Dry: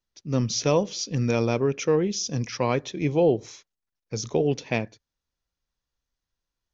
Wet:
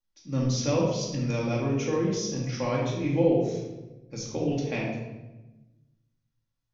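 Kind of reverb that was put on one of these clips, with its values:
rectangular room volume 530 cubic metres, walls mixed, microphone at 2.3 metres
level −9 dB

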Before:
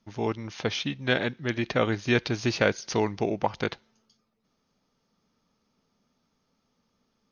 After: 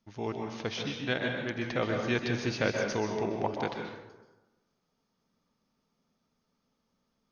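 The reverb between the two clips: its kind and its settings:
dense smooth reverb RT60 1.1 s, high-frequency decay 0.55×, pre-delay 115 ms, DRR 2 dB
level −6.5 dB

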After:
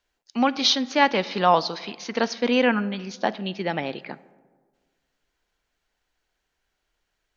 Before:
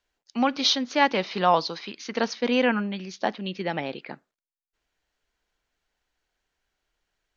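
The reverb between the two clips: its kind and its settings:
comb and all-pass reverb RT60 1.6 s, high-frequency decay 0.35×, pre-delay 5 ms, DRR 18.5 dB
level +2 dB

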